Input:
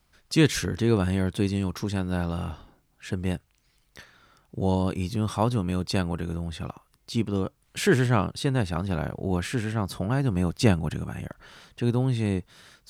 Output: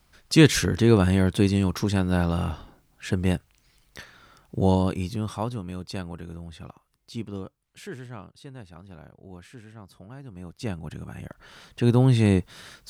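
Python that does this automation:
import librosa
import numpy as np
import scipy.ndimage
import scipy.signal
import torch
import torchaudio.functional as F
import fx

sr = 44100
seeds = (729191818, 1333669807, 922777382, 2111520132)

y = fx.gain(x, sr, db=fx.line((4.64, 4.5), (5.62, -7.5), (7.35, -7.5), (7.92, -17.5), (10.28, -17.5), (10.98, -6.0), (12.06, 6.5)))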